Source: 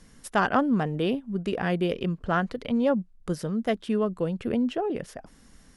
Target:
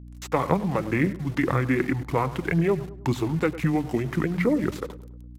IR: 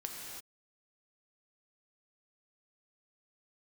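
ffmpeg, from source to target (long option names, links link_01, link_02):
-filter_complex "[0:a]highpass=96,equalizer=frequency=3000:width_type=o:width=2.1:gain=7,bandreject=frequency=50:width_type=h:width=6,bandreject=frequency=100:width_type=h:width=6,bandreject=frequency=150:width_type=h:width=6,bandreject=frequency=200:width_type=h:width=6,bandreject=frequency=250:width_type=h:width=6,bandreject=frequency=300:width_type=h:width=6,bandreject=frequency=350:width_type=h:width=6,acrossover=split=400|3000[link_01][link_02][link_03];[link_01]acompressor=threshold=-34dB:ratio=4[link_04];[link_02]acompressor=threshold=-31dB:ratio=4[link_05];[link_03]acompressor=threshold=-49dB:ratio=4[link_06];[link_04][link_05][link_06]amix=inputs=3:normalize=0,aeval=exprs='val(0)*gte(abs(val(0)),0.00562)':channel_layout=same,aphaser=in_gain=1:out_gain=1:delay=4.1:decay=0.37:speed=1.8:type=triangular,asetrate=31443,aresample=44100,aeval=exprs='val(0)+0.00398*(sin(2*PI*60*n/s)+sin(2*PI*2*60*n/s)/2+sin(2*PI*3*60*n/s)/3+sin(2*PI*4*60*n/s)/4+sin(2*PI*5*60*n/s)/5)':channel_layout=same,atempo=1.5,asplit=2[link_07][link_08];[link_08]adelay=103,lowpass=frequency=1300:poles=1,volume=-14.5dB,asplit=2[link_09][link_10];[link_10]adelay=103,lowpass=frequency=1300:poles=1,volume=0.48,asplit=2[link_11][link_12];[link_12]adelay=103,lowpass=frequency=1300:poles=1,volume=0.48,asplit=2[link_13][link_14];[link_14]adelay=103,lowpass=frequency=1300:poles=1,volume=0.48[link_15];[link_07][link_09][link_11][link_13][link_15]amix=inputs=5:normalize=0,volume=7dB"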